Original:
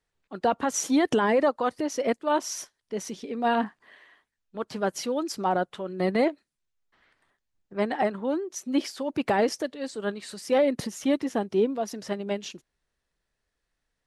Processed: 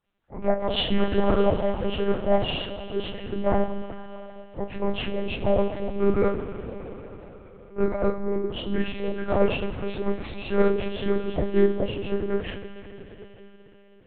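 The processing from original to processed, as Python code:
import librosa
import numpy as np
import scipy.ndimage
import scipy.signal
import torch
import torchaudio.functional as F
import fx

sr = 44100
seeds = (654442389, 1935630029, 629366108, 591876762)

y = fx.partial_stretch(x, sr, pct=78)
y = fx.rev_double_slope(y, sr, seeds[0], early_s=0.23, late_s=4.5, knee_db=-21, drr_db=-7.0)
y = fx.lpc_monotone(y, sr, seeds[1], pitch_hz=200.0, order=8)
y = y * librosa.db_to_amplitude(-3.0)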